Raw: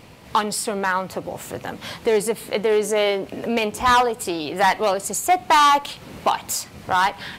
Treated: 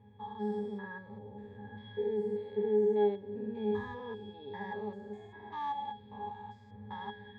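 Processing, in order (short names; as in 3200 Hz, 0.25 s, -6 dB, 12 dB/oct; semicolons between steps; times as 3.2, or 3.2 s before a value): stepped spectrum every 0.2 s; octave resonator G#, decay 0.22 s; low-pass opened by the level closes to 2900 Hz, open at -29 dBFS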